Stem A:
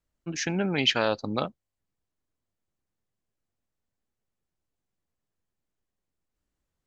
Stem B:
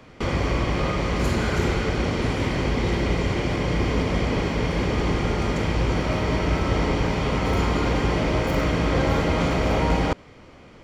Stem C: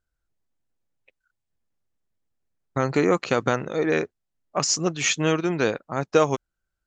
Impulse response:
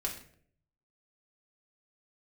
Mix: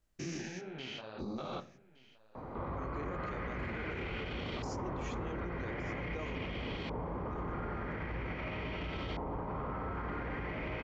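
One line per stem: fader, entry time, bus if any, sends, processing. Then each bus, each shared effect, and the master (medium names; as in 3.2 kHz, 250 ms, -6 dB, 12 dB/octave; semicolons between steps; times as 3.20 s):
-0.5 dB, 0.00 s, send -11 dB, echo send -18 dB, spectrogram pixelated in time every 200 ms; compressor with a negative ratio -39 dBFS, ratio -1; detune thickener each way 48 cents
+1.0 dB, 2.35 s, no send, no echo send, compression 2:1, threshold -38 dBFS, peak gain reduction 12 dB; LFO low-pass saw up 0.44 Hz 890–3700 Hz
-15.5 dB, 0.00 s, send -16 dB, echo send -12.5 dB, low-pass 2.4 kHz 6 dB/octave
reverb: on, RT60 0.60 s, pre-delay 3 ms
echo: delay 1167 ms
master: peak limiter -31 dBFS, peak gain reduction 14.5 dB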